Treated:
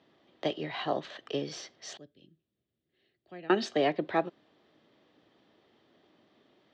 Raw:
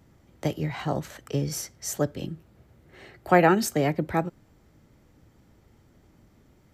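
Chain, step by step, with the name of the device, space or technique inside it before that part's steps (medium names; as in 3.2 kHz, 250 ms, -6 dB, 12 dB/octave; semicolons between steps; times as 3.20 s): 1.97–3.50 s: amplifier tone stack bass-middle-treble 10-0-1; phone earpiece (cabinet simulation 470–3900 Hz, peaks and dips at 510 Hz -5 dB, 880 Hz -8 dB, 1.4 kHz -9 dB, 2.2 kHz -8 dB, 3.5 kHz +4 dB); trim +4.5 dB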